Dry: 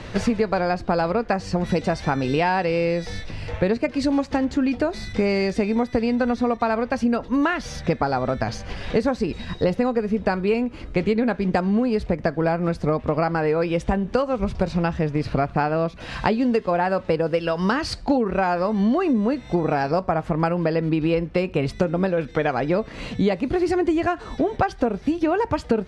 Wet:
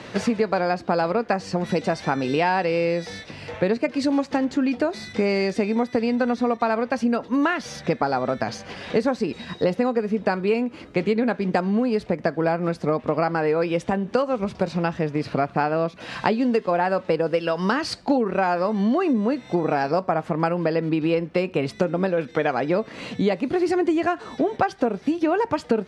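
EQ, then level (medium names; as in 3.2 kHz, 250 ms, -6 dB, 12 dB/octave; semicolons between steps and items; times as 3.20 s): high-pass 170 Hz 12 dB/octave; 0.0 dB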